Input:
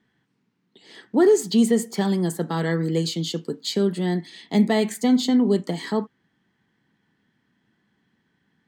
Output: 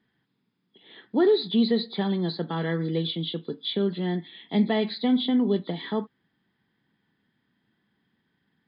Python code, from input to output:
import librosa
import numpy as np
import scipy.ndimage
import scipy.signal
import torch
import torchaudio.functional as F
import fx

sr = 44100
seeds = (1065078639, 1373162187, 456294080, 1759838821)

y = fx.freq_compress(x, sr, knee_hz=3200.0, ratio=4.0)
y = F.gain(torch.from_numpy(y), -4.0).numpy()